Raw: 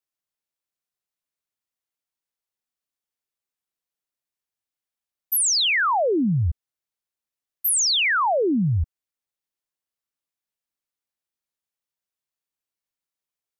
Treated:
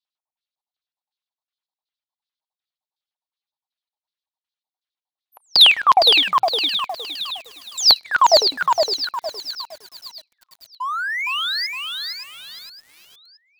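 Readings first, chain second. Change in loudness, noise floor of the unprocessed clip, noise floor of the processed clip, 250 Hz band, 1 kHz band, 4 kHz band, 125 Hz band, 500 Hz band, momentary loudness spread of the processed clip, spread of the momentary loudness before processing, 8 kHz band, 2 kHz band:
+4.0 dB, under -85 dBFS, under -85 dBFS, -15.5 dB, +8.5 dB, +11.5 dB, under -25 dB, +4.0 dB, 20 LU, 10 LU, -6.5 dB, +3.5 dB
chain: LPF 10000 Hz 12 dB/oct; LFO low-pass square 2.7 Hz 880–3700 Hz; shoebox room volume 2600 m³, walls furnished, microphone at 0.57 m; reverb removal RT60 1.1 s; spectral delete 7.62–8.05, 310–3900 Hz; LFO high-pass square 9.8 Hz 820–4100 Hz; painted sound rise, 10.8–11.67, 970–5200 Hz -28 dBFS; on a send: thin delay 0.568 s, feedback 50%, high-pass 3400 Hz, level -7 dB; on the sum: sample leveller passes 1; lo-fi delay 0.462 s, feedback 35%, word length 7-bit, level -4 dB

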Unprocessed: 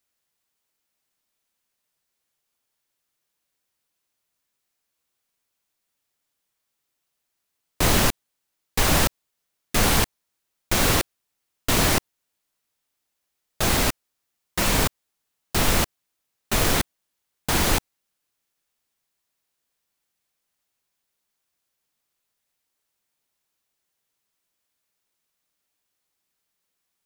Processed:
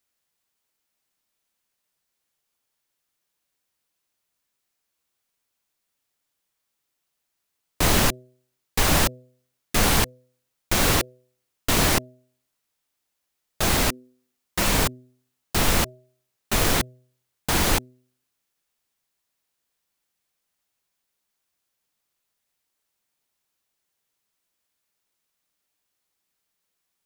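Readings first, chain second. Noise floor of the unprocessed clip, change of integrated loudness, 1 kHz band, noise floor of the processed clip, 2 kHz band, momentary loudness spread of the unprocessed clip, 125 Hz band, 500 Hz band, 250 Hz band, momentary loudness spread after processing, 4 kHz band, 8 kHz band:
-79 dBFS, 0.0 dB, 0.0 dB, -79 dBFS, 0.0 dB, 11 LU, 0.0 dB, 0.0 dB, 0.0 dB, 11 LU, 0.0 dB, 0.0 dB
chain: de-hum 126.1 Hz, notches 5

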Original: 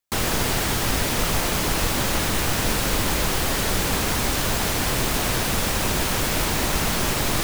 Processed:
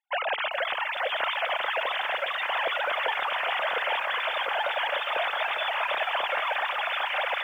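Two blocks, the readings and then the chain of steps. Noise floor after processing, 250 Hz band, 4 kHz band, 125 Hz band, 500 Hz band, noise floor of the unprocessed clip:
-33 dBFS, under -30 dB, -5.0 dB, under -40 dB, -3.5 dB, -24 dBFS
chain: sine-wave speech; de-hum 434.3 Hz, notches 3; lo-fi delay 0.407 s, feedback 80%, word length 8-bit, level -9.5 dB; gain -7 dB

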